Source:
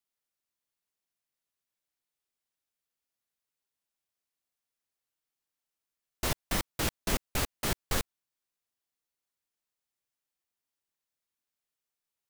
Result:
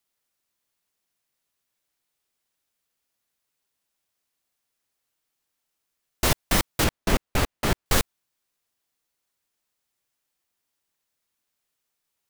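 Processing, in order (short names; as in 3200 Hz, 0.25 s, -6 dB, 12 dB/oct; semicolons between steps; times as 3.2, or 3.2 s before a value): 6.84–7.86 high shelf 3700 Hz -9 dB; gain +9 dB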